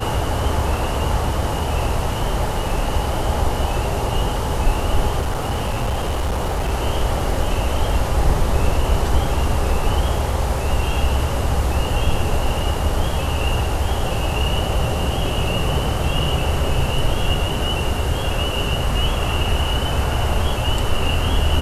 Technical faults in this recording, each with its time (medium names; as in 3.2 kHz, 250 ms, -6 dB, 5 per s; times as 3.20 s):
5.20–6.71 s: clipped -17 dBFS